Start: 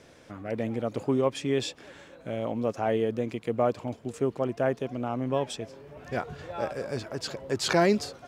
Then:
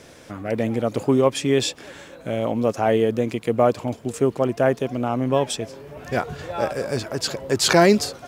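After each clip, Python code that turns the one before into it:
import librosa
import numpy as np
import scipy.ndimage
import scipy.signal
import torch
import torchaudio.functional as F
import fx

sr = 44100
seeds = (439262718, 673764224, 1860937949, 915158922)

y = fx.high_shelf(x, sr, hz=7900.0, db=9.5)
y = y * librosa.db_to_amplitude(7.5)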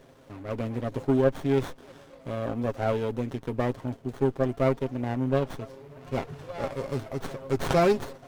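y = x + 0.56 * np.pad(x, (int(7.5 * sr / 1000.0), 0))[:len(x)]
y = fx.running_max(y, sr, window=17)
y = y * librosa.db_to_amplitude(-8.5)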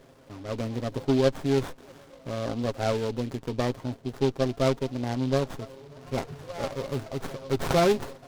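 y = fx.noise_mod_delay(x, sr, seeds[0], noise_hz=3300.0, depth_ms=0.044)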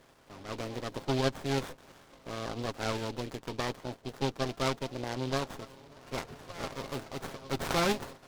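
y = fx.spec_clip(x, sr, under_db=13)
y = y * librosa.db_to_amplitude(-6.5)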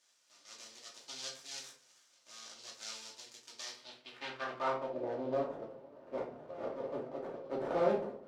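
y = fx.filter_sweep_bandpass(x, sr, from_hz=6400.0, to_hz=510.0, start_s=3.61, end_s=5.0, q=1.8)
y = fx.room_shoebox(y, sr, seeds[1], volume_m3=380.0, walls='furnished', distance_m=2.6)
y = y * librosa.db_to_amplitude(-1.5)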